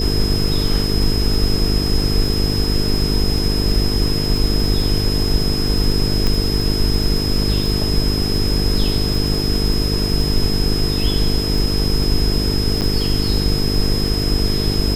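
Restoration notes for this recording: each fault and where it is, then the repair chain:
buzz 50 Hz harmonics 9 -21 dBFS
crackle 27/s -22 dBFS
tone 5100 Hz -23 dBFS
6.27 pop
12.81–12.82 gap 7.9 ms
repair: de-click; notch 5100 Hz, Q 30; de-hum 50 Hz, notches 9; interpolate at 12.81, 7.9 ms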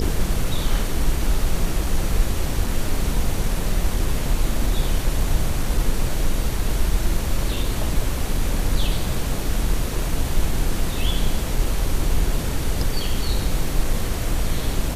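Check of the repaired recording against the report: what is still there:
none

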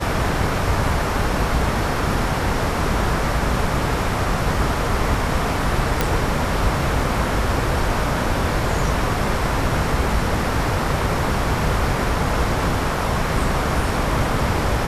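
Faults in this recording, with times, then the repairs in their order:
6.01 pop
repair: de-click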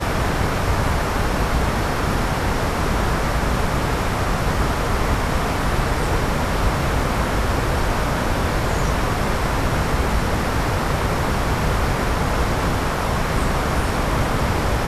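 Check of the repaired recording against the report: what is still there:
none

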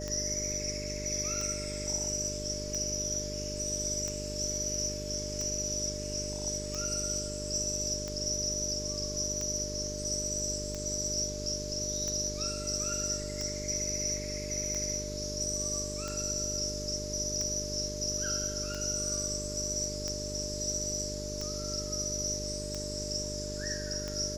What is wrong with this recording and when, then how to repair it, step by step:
buzz 50 Hz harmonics 9 -40 dBFS
tick 45 rpm -23 dBFS
tone 600 Hz -40 dBFS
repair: de-click; notch 600 Hz, Q 30; de-hum 50 Hz, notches 9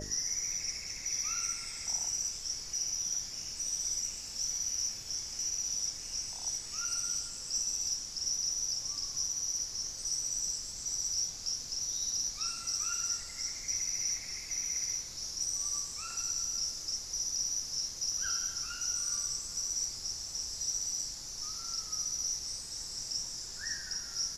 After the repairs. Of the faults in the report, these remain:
none

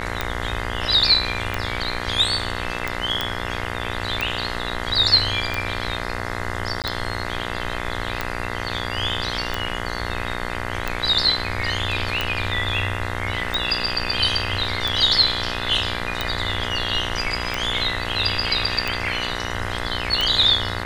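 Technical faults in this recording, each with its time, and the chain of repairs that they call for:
buzz 60 Hz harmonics 35 -29 dBFS
tick 45 rpm -8 dBFS
3.21 pop -8 dBFS
6.82–6.84 gap 18 ms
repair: de-click; de-hum 60 Hz, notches 35; interpolate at 6.82, 18 ms

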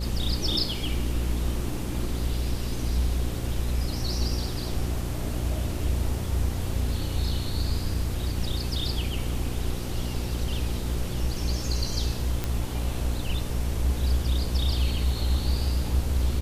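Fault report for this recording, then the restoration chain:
buzz 60 Hz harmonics 9 -31 dBFS
12.44 pop -13 dBFS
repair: de-click; de-hum 60 Hz, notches 9

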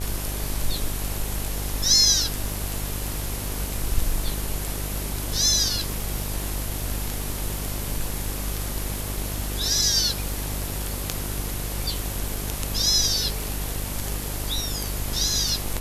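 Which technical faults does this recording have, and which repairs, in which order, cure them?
buzz 50 Hz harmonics 24 -31 dBFS
crackle 44/s -32 dBFS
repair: de-click; de-hum 50 Hz, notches 24

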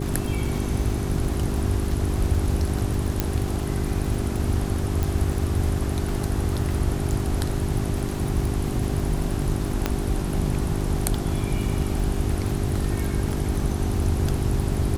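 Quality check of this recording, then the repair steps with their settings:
crackle 45/s -28 dBFS
hum 50 Hz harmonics 8 -29 dBFS
3.2 pop -6 dBFS
5.03 pop
9.86 pop -7 dBFS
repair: de-click; de-hum 50 Hz, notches 8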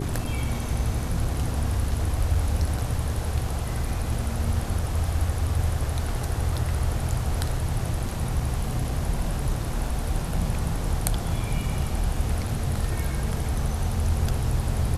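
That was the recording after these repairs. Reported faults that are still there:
9.86 pop

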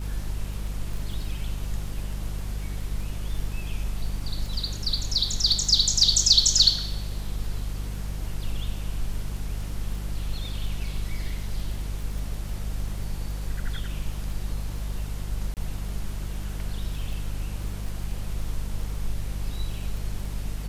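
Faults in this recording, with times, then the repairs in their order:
crackle 24/s -34 dBFS
hum 50 Hz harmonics 4 -32 dBFS
15.54–15.57 gap 28 ms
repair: de-click; de-hum 50 Hz, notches 4; interpolate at 15.54, 28 ms

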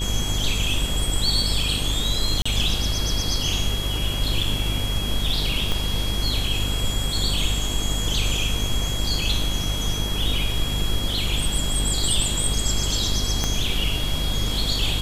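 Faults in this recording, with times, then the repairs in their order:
buzz 50 Hz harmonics 27 -27 dBFS
tone 3300 Hz -29 dBFS
2.42–2.46 gap 35 ms
5.72 pop
13.44 pop -8 dBFS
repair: de-click; notch 3300 Hz, Q 30; de-hum 50 Hz, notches 27; interpolate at 2.42, 35 ms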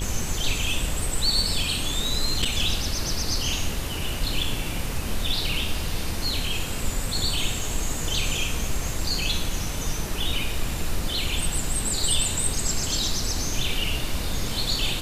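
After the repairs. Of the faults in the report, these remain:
5.72 pop
13.44 pop

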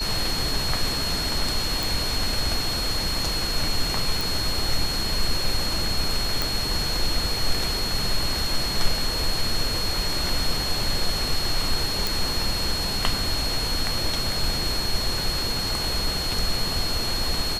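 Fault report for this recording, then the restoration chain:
tone 4300 Hz -27 dBFS
1.83 pop
4.21 pop
6.42 pop
12.07 pop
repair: de-click; notch 4300 Hz, Q 30

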